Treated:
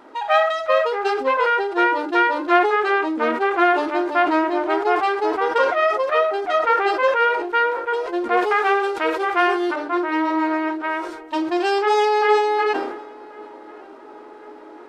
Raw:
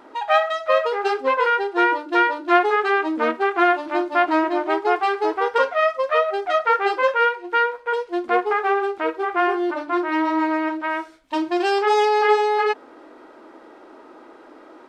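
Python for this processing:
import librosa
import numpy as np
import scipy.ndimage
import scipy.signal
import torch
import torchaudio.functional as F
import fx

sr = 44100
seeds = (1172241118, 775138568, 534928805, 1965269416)

y = fx.high_shelf(x, sr, hz=2400.0, db=11.0, at=(8.37, 9.76))
y = fx.echo_filtered(y, sr, ms=1085, feedback_pct=74, hz=1800.0, wet_db=-23.0)
y = fx.sustainer(y, sr, db_per_s=56.0)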